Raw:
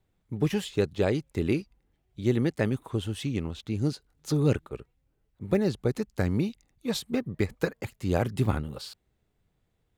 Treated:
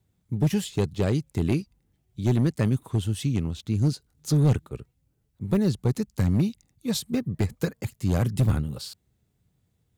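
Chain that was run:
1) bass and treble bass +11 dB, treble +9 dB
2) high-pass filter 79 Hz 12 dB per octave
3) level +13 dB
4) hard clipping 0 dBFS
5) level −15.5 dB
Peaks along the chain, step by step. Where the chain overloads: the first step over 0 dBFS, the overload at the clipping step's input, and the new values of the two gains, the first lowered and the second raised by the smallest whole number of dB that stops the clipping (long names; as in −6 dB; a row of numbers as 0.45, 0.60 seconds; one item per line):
−5.5, −6.0, +7.0, 0.0, −15.5 dBFS
step 3, 7.0 dB
step 3 +6 dB, step 5 −8.5 dB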